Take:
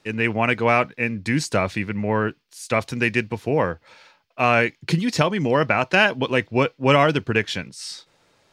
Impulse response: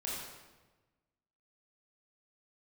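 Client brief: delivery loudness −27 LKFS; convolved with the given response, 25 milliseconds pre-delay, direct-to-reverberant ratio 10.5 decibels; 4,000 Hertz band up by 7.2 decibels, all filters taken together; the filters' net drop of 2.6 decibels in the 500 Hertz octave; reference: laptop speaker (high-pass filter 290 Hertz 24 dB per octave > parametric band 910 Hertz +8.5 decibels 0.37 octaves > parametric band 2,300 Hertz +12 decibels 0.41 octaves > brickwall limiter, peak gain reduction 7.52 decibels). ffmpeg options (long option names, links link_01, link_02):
-filter_complex "[0:a]equalizer=frequency=500:width_type=o:gain=-4,equalizer=frequency=4000:width_type=o:gain=7,asplit=2[link_01][link_02];[1:a]atrim=start_sample=2205,adelay=25[link_03];[link_02][link_03]afir=irnorm=-1:irlink=0,volume=-12.5dB[link_04];[link_01][link_04]amix=inputs=2:normalize=0,highpass=frequency=290:width=0.5412,highpass=frequency=290:width=1.3066,equalizer=frequency=910:width_type=o:width=0.37:gain=8.5,equalizer=frequency=2300:width_type=o:width=0.41:gain=12,volume=-10dB,alimiter=limit=-14.5dB:level=0:latency=1"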